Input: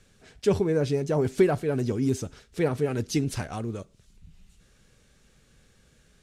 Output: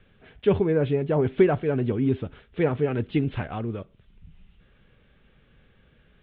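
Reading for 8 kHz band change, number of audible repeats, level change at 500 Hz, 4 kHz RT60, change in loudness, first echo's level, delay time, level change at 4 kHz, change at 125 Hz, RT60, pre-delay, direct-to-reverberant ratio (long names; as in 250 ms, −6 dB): below −40 dB, no echo audible, +2.0 dB, no reverb audible, +2.0 dB, no echo audible, no echo audible, −4.0 dB, +2.0 dB, no reverb audible, no reverb audible, no reverb audible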